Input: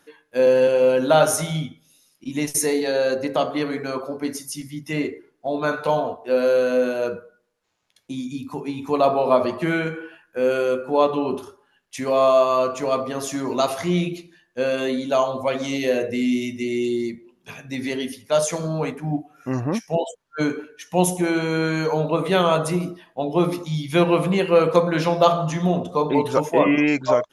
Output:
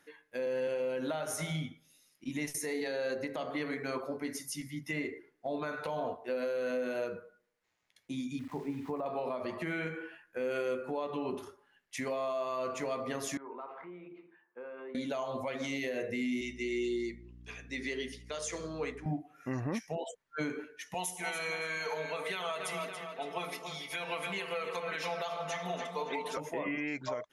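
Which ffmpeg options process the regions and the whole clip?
-filter_complex "[0:a]asettb=1/sr,asplit=3[s0][s1][s2];[s0]atrim=end=8.394[s3];[s1]atrim=start=8.39:end=9.06,asetpts=PTS-STARTPTS,afade=t=in:d=0.004:c=qsin,afade=t=out:st=0.666:d=0.004:c=qsin,lowpass=1300,aeval=exprs='val(0)*gte(abs(val(0)),0.00668)':c=same[s4];[s2]atrim=start=9.056[s5];[s3][s4]acrossfade=d=0.004:c1=hsin:c2=qsin[s6];[s6][s5]acrossfade=d=0.004:c1=qsin:c2=hsin,asettb=1/sr,asplit=3[s7][s8][s9];[s7]atrim=end=13.374[s10];[s8]atrim=start=13.37:end=14.95,asetpts=PTS-STARTPTS,afade=t=in:d=0.004:c=qsin,afade=t=out:st=1.576:d=0.004:c=qsin,acompressor=threshold=0.0126:ratio=3:attack=3.2:release=140:knee=1:detection=peak,highpass=340,equalizer=f=410:t=q:w=4:g=5,equalizer=f=640:t=q:w=4:g=-6,equalizer=f=920:t=q:w=4:g=8,equalizer=f=1300:t=q:w=4:g=4,equalizer=f=1900:t=q:w=4:g=-8,lowpass=f=2000:w=0.5412,lowpass=f=2000:w=1.3066[s11];[s9]atrim=start=14.946[s12];[s10][s11]acrossfade=d=0.004:c1=hsin:c2=qsin[s13];[s13][s12]acrossfade=d=0.004:c1=qsin:c2=hsin,asettb=1/sr,asplit=3[s14][s15][s16];[s14]atrim=end=16.414[s17];[s15]atrim=start=16.41:end=19.06,asetpts=PTS-STARTPTS,afade=t=in:d=0.004:c=qsin,afade=t=out:st=2.646:d=0.004:c=qsin,highpass=340,equalizer=f=410:t=q:w=4:g=4,equalizer=f=610:t=q:w=4:g=-8,equalizer=f=860:t=q:w=4:g=-9,equalizer=f=1500:t=q:w=4:g=-4,equalizer=f=2200:t=q:w=4:g=-3,lowpass=f=8600:w=0.5412,lowpass=f=8600:w=1.3066,aeval=exprs='val(0)+0.00708*(sin(2*PI*60*n/s)+sin(2*PI*2*60*n/s)/2+sin(2*PI*3*60*n/s)/3+sin(2*PI*4*60*n/s)/4+sin(2*PI*5*60*n/s)/5)':c=same[s18];[s16]atrim=start=19.056[s19];[s17][s18]acrossfade=d=0.004:c1=hsin:c2=qsin[s20];[s20][s19]acrossfade=d=0.004:c1=qsin:c2=hsin,asettb=1/sr,asplit=3[s21][s22][s23];[s21]atrim=end=20.944[s24];[s22]atrim=start=20.94:end=26.37,asetpts=PTS-STARTPTS,afade=t=in:d=0.004:c=qsin,afade=t=out:st=5.426:d=0.004:c=qsin,highpass=f=1400:p=1,aecho=1:1:4.5:0.79,atrim=end_sample=239463,asplit=2[s25][s26];[s26]adelay=281,lowpass=f=4700:p=1,volume=0.355,asplit=2[s27][s28];[s28]adelay=281,lowpass=f=4700:p=1,volume=0.51,asplit=2[s29][s30];[s30]adelay=281,lowpass=f=4700:p=1,volume=0.51,asplit=2[s31][s32];[s32]adelay=281,lowpass=f=4700:p=1,volume=0.51,asplit=2[s33][s34];[s34]adelay=281,lowpass=f=4700:p=1,volume=0.51,asplit=2[s35][s36];[s36]adelay=281,lowpass=f=4700:p=1,volume=0.51[s37];[s25][s27][s29][s31][s33][s35][s37]amix=inputs=7:normalize=0,atrim=end_sample=239463[s38];[s23]atrim=start=26.366[s39];[s24][s38]acrossfade=d=0.004:c1=hsin:c2=qsin[s40];[s40][s39]acrossfade=d=0.004:c1=qsin:c2=hsin,equalizer=f=2000:t=o:w=0.47:g=8,acompressor=threshold=0.1:ratio=6,alimiter=limit=0.126:level=0:latency=1:release=153,volume=0.398"

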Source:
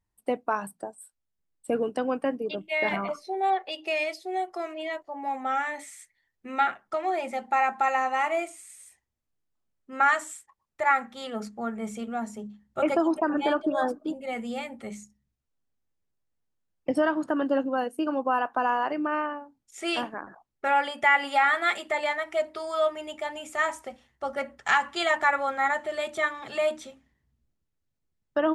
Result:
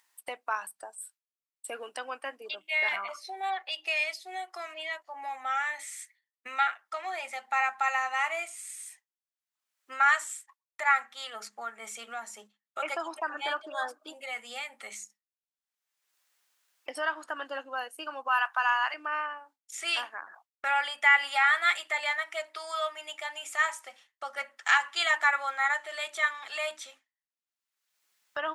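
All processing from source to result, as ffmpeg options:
-filter_complex "[0:a]asettb=1/sr,asplit=3[s0][s1][s2];[s0]atrim=end=18.284[s3];[s1]atrim=start=18.28:end=18.94,asetpts=PTS-STARTPTS,afade=t=in:d=0.004:c=qsin,afade=t=out:st=0.656:d=0.004:c=qsin,highpass=1100,acontrast=61[s4];[s2]atrim=start=18.936[s5];[s3][s4]acrossfade=d=0.004:c1=hsin:c2=qsin[s6];[s6][s5]acrossfade=d=0.004:c1=qsin:c2=hsin,highpass=1300,agate=range=0.0224:threshold=0.00178:ratio=3:detection=peak,acompressor=mode=upward:threshold=0.0141:ratio=2.5,volume=1.26"

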